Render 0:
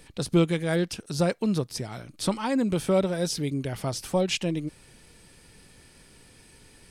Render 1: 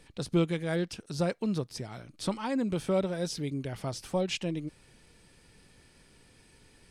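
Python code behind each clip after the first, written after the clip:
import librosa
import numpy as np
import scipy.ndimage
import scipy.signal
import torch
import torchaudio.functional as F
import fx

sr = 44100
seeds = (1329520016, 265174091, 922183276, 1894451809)

y = fx.high_shelf(x, sr, hz=11000.0, db=-10.5)
y = y * librosa.db_to_amplitude(-5.0)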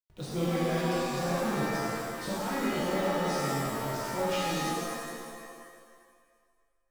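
y = fx.delta_hold(x, sr, step_db=-44.0)
y = fx.rev_shimmer(y, sr, seeds[0], rt60_s=1.8, semitones=7, shimmer_db=-2, drr_db=-8.0)
y = y * librosa.db_to_amplitude(-9.0)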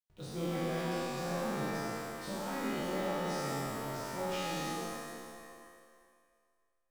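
y = fx.spec_trails(x, sr, decay_s=1.01)
y = y * librosa.db_to_amplitude(-8.0)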